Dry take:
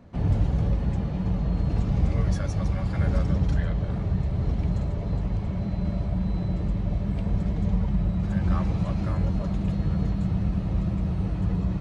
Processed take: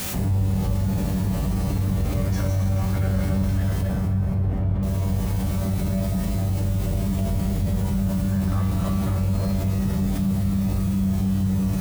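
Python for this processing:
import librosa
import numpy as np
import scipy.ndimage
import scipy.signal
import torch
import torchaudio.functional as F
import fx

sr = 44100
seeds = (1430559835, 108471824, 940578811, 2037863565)

p1 = fx.quant_dither(x, sr, seeds[0], bits=6, dither='triangular')
p2 = x + (p1 * librosa.db_to_amplitude(-8.0))
p3 = fx.lowpass(p2, sr, hz=1600.0, slope=12, at=(3.81, 4.83))
p4 = fx.comb_fb(p3, sr, f0_hz=96.0, decay_s=0.93, harmonics='all', damping=0.0, mix_pct=90)
p5 = p4 + fx.echo_feedback(p4, sr, ms=266, feedback_pct=42, wet_db=-8, dry=0)
p6 = fx.env_flatten(p5, sr, amount_pct=70)
y = p6 * librosa.db_to_amplitude(6.0)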